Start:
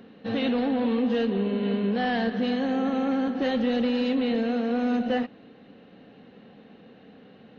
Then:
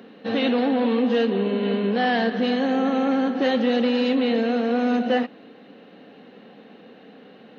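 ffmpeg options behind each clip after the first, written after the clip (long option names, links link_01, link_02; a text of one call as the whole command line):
ffmpeg -i in.wav -af "highpass=230,volume=5.5dB" out.wav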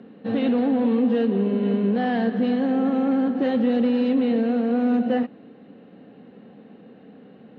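ffmpeg -i in.wav -af "aemphasis=mode=reproduction:type=riaa,volume=-5dB" out.wav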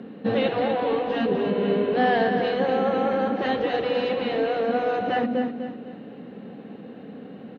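ffmpeg -i in.wav -af "aecho=1:1:249|498|747|996:0.398|0.147|0.0545|0.0202,afftfilt=real='re*lt(hypot(re,im),0.562)':imag='im*lt(hypot(re,im),0.562)':win_size=1024:overlap=0.75,volume=5.5dB" out.wav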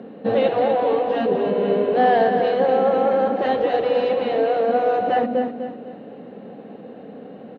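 ffmpeg -i in.wav -af "equalizer=frequency=620:width_type=o:width=1.4:gain=9,volume=-2dB" out.wav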